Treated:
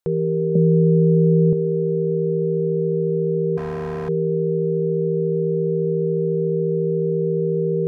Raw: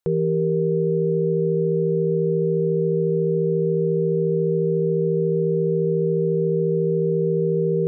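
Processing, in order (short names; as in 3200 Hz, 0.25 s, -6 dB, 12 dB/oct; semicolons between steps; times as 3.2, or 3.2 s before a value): 0.55–1.53 small resonant body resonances 210/560 Hz, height 17 dB, ringing for 55 ms; 3.57–4.09 overloaded stage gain 25 dB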